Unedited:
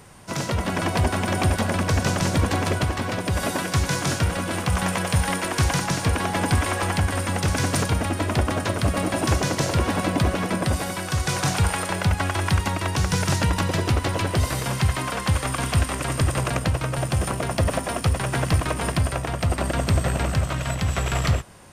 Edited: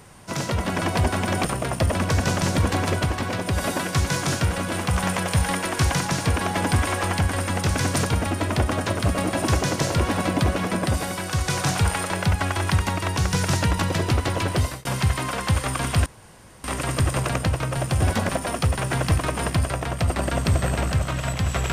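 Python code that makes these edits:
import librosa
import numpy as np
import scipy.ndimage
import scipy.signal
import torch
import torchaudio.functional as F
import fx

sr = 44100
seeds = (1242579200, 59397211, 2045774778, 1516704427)

y = fx.edit(x, sr, fx.swap(start_s=1.45, length_s=0.27, other_s=17.23, other_length_s=0.48),
    fx.fade_out_span(start_s=14.39, length_s=0.25),
    fx.insert_room_tone(at_s=15.85, length_s=0.58), tone=tone)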